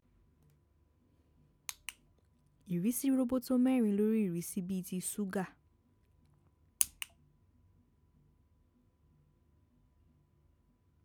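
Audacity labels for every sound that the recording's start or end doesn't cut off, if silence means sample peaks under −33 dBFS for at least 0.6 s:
1.690000	1.890000	sound
2.710000	5.430000	sound
6.810000	7.020000	sound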